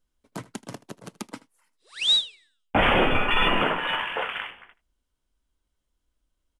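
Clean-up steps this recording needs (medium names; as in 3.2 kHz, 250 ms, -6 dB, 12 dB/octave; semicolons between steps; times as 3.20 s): inverse comb 79 ms -19.5 dB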